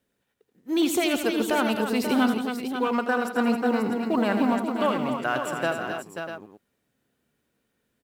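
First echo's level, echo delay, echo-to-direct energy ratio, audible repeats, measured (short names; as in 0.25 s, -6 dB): -9.5 dB, 81 ms, -2.5 dB, 5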